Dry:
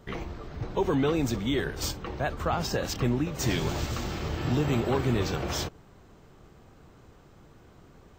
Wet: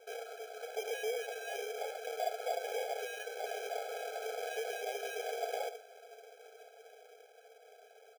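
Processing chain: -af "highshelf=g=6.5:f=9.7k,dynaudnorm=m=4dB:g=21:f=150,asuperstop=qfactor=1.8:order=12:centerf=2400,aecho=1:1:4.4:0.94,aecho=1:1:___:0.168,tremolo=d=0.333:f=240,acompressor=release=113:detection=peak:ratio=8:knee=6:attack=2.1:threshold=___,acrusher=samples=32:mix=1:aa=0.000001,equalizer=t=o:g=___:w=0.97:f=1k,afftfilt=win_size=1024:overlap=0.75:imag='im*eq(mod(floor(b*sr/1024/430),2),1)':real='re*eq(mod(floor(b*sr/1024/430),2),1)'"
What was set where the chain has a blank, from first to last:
71, -30dB, 8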